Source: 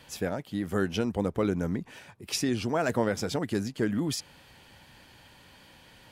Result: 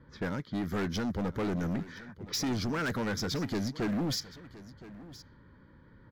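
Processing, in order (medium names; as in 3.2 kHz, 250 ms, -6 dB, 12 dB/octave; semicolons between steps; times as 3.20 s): static phaser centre 2.7 kHz, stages 6; level-controlled noise filter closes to 780 Hz, open at -30.5 dBFS; hard clipper -32 dBFS, distortion -7 dB; delay 1018 ms -17.5 dB; trim +3.5 dB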